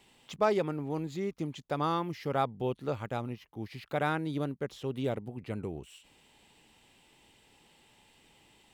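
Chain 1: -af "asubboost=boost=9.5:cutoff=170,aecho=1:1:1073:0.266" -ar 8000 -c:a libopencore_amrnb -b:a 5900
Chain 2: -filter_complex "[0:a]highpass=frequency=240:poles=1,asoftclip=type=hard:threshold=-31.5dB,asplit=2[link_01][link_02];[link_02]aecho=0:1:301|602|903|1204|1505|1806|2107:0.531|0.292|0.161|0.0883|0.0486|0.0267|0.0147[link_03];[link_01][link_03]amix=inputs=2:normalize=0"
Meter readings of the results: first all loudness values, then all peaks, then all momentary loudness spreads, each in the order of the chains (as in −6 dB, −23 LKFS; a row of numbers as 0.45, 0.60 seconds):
−30.5, −37.5 LKFS; −15.0, −26.0 dBFS; 14, 14 LU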